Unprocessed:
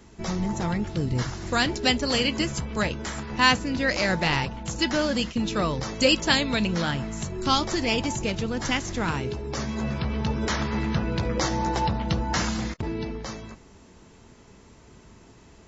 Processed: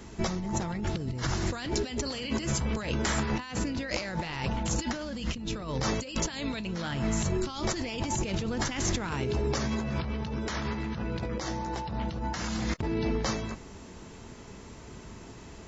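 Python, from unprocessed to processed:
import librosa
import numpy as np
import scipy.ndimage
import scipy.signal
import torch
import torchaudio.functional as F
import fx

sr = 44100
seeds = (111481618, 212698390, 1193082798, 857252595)

y = fx.low_shelf(x, sr, hz=160.0, db=8.5, at=(5.03, 5.68))
y = fx.over_compress(y, sr, threshold_db=-32.0, ratio=-1.0)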